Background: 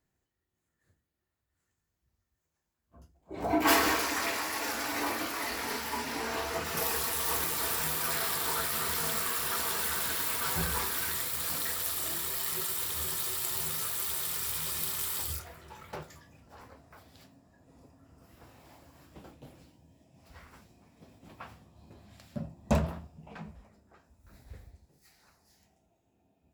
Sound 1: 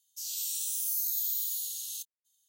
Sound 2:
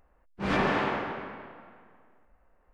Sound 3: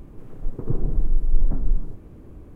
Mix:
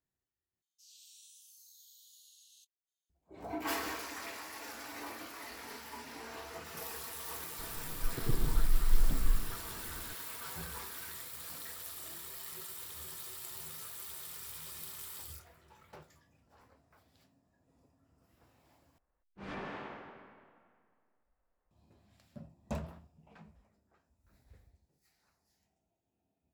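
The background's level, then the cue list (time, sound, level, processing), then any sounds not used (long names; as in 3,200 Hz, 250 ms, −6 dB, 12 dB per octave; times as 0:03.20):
background −12 dB
0:00.62: overwrite with 1 −16.5 dB + resonant band-pass 3,200 Hz, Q 0.9
0:07.59: mix in 3 −8 dB
0:18.98: overwrite with 2 −16.5 dB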